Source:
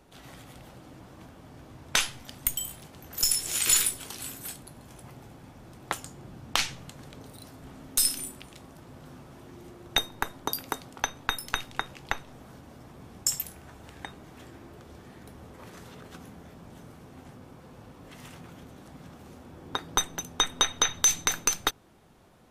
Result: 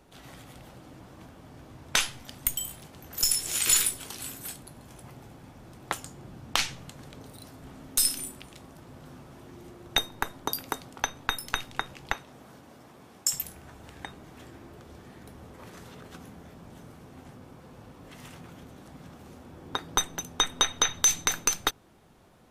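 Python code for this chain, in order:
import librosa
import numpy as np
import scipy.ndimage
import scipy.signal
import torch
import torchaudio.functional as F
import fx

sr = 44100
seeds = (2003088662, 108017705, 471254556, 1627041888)

y = fx.highpass(x, sr, hz=fx.line((12.12, 120.0), (13.32, 450.0)), slope=6, at=(12.12, 13.32), fade=0.02)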